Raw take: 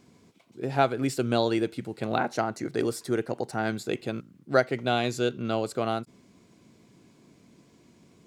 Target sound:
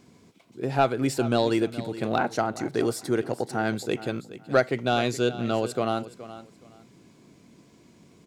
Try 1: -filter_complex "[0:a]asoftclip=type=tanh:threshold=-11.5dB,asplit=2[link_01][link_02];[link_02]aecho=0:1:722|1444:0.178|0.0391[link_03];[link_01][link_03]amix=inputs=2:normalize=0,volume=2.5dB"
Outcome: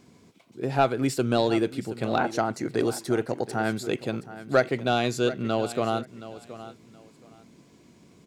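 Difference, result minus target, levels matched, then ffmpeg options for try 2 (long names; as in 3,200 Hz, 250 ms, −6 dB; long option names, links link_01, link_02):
echo 301 ms late
-filter_complex "[0:a]asoftclip=type=tanh:threshold=-11.5dB,asplit=2[link_01][link_02];[link_02]aecho=0:1:421|842:0.178|0.0391[link_03];[link_01][link_03]amix=inputs=2:normalize=0,volume=2.5dB"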